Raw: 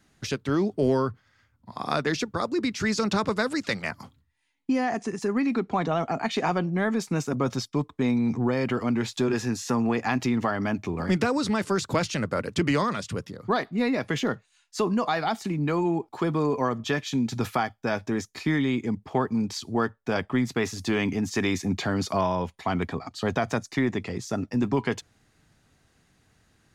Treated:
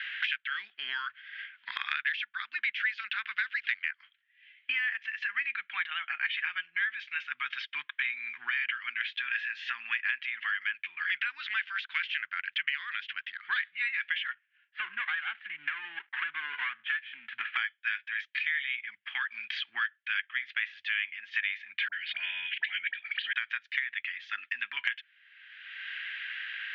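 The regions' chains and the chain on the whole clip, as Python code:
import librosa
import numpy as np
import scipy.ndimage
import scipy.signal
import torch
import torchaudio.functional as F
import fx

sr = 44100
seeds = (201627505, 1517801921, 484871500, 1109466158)

y = fx.chain(x, sr, fx.lowpass(hz=1100.0, slope=12),
    fx.running_max(window=5), at=(14.31, 17.57))
y = fx.chain(y, sr, fx.fixed_phaser(hz=2700.0, stages=4),
    fx.dispersion(late='highs', ms=51.0, hz=1000.0),
    fx.pre_swell(db_per_s=130.0), at=(21.88, 23.33))
y = scipy.signal.sosfilt(scipy.signal.ellip(3, 1.0, 60, [1600.0, 3200.0], 'bandpass', fs=sr, output='sos'), y)
y = fx.band_squash(y, sr, depth_pct=100)
y = y * 10.0 ** (5.5 / 20.0)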